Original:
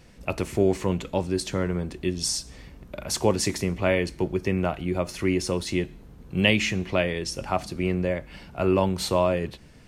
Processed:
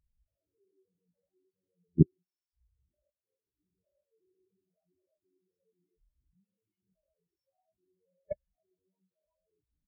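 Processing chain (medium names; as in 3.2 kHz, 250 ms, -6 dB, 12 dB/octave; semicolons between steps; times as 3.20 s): gated-style reverb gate 160 ms rising, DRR -5.5 dB; compressor with a negative ratio -30 dBFS, ratio -1; on a send: delay 931 ms -9 dB; on the sum: level held to a coarse grid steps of 22 dB; spectral contrast expander 4:1; trim +5.5 dB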